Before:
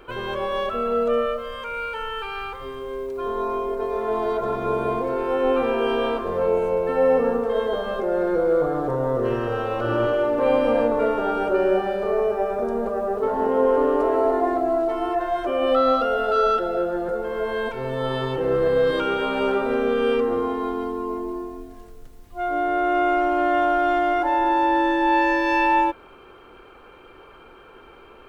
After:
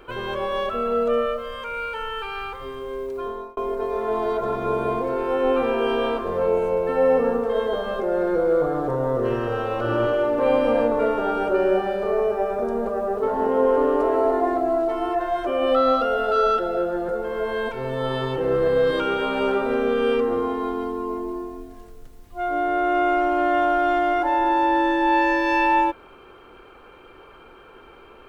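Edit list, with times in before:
0:03.16–0:03.57: fade out

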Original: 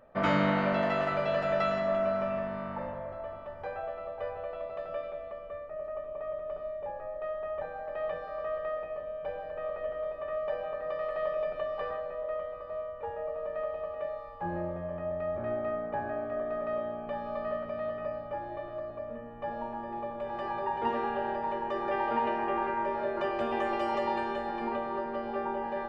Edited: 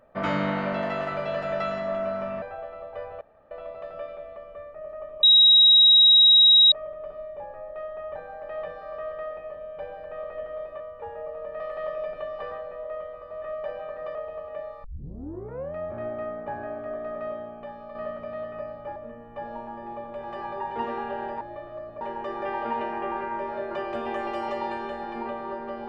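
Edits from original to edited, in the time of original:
0:02.42–0:03.67: remove
0:04.46: splice in room tone 0.30 s
0:06.18: insert tone 3,820 Hz −11.5 dBFS 1.49 s
0:10.26–0:10.99: swap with 0:12.81–0:13.61
0:14.30: tape start 0.90 s
0:16.70–0:17.41: fade out, to −7 dB
0:18.42–0:19.02: move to 0:21.47

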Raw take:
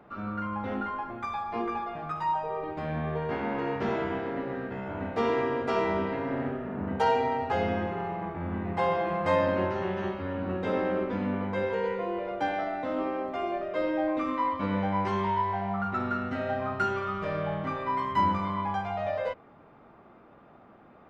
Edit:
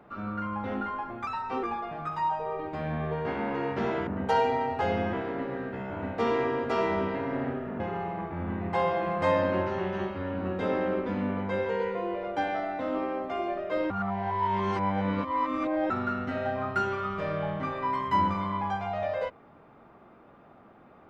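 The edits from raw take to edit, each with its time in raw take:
0:01.27–0:01.67: play speed 111%
0:06.78–0:07.84: move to 0:04.11
0:13.94–0:15.94: reverse

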